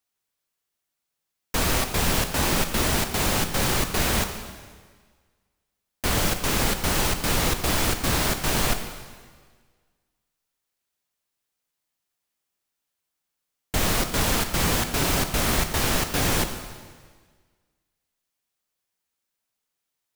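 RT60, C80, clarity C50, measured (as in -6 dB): 1.6 s, 9.5 dB, 8.5 dB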